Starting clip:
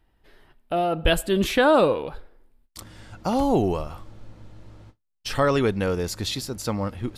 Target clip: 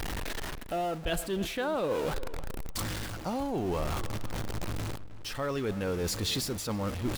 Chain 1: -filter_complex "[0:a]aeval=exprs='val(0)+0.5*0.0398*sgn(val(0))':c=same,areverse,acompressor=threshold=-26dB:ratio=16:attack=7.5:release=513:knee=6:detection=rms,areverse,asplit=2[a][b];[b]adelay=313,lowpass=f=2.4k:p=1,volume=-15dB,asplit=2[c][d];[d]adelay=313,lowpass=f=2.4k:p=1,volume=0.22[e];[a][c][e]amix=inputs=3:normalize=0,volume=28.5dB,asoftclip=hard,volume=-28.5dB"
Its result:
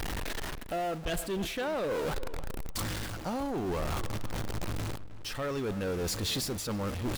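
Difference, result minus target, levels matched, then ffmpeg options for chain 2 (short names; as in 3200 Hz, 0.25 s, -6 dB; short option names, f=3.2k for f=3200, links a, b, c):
overloaded stage: distortion +32 dB
-filter_complex "[0:a]aeval=exprs='val(0)+0.5*0.0398*sgn(val(0))':c=same,areverse,acompressor=threshold=-26dB:ratio=16:attack=7.5:release=513:knee=6:detection=rms,areverse,asplit=2[a][b];[b]adelay=313,lowpass=f=2.4k:p=1,volume=-15dB,asplit=2[c][d];[d]adelay=313,lowpass=f=2.4k:p=1,volume=0.22[e];[a][c][e]amix=inputs=3:normalize=0,volume=21dB,asoftclip=hard,volume=-21dB"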